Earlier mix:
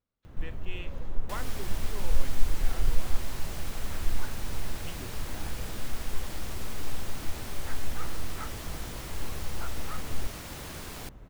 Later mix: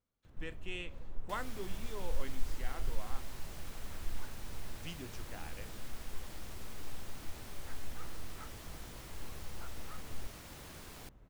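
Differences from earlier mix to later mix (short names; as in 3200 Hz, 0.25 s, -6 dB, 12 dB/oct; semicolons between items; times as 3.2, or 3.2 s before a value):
speech: remove LPF 5500 Hz; first sound -11.0 dB; second sound -9.5 dB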